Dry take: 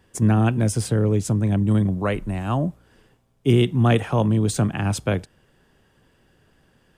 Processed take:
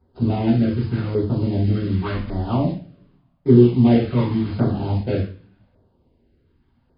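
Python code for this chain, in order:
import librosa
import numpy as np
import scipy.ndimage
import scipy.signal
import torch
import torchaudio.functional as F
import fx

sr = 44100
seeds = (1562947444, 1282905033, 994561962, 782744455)

p1 = scipy.signal.medfilt(x, 25)
p2 = fx.quant_dither(p1, sr, seeds[0], bits=6, dither='none')
p3 = p1 + (p2 * 10.0 ** (-3.0 / 20.0))
p4 = fx.rev_double_slope(p3, sr, seeds[1], early_s=0.4, late_s=1.5, knee_db=-26, drr_db=-8.5)
p5 = fx.filter_lfo_notch(p4, sr, shape='saw_down', hz=0.87, low_hz=360.0, high_hz=2900.0, q=0.94)
p6 = fx.brickwall_lowpass(p5, sr, high_hz=5100.0)
y = p6 * 10.0 ** (-9.5 / 20.0)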